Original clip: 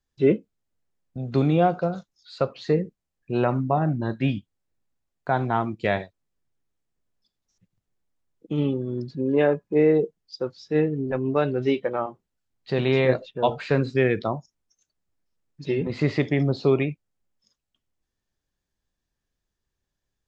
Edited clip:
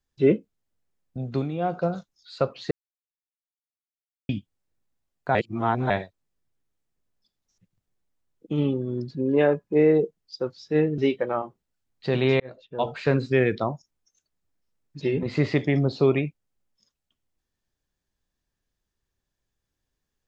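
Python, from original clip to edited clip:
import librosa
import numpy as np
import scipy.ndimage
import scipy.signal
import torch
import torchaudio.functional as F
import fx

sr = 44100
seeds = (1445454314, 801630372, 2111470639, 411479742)

y = fx.edit(x, sr, fx.fade_down_up(start_s=1.22, length_s=0.63, db=-10.5, fade_s=0.27),
    fx.silence(start_s=2.71, length_s=1.58),
    fx.reverse_span(start_s=5.35, length_s=0.55),
    fx.cut(start_s=10.98, length_s=0.64),
    fx.fade_in_span(start_s=13.04, length_s=0.69), tone=tone)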